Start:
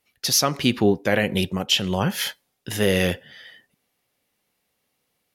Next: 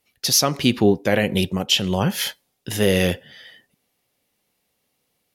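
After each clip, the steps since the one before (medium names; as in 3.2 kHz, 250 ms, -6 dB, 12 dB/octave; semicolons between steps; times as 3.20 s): peaking EQ 1.5 kHz -3.5 dB 1.4 oct; trim +2.5 dB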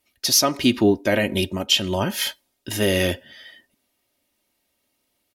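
comb 3.2 ms, depth 60%; trim -1.5 dB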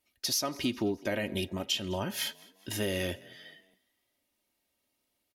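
compression 2.5:1, threshold -22 dBFS, peak gain reduction 7 dB; frequency-shifting echo 207 ms, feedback 48%, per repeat +34 Hz, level -23 dB; trim -7.5 dB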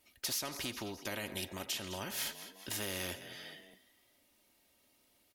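spectrum-flattening compressor 2:1; trim -6.5 dB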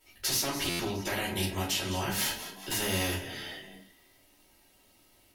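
simulated room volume 210 m³, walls furnished, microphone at 4.3 m; buffer glitch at 0.69 s, samples 512, times 8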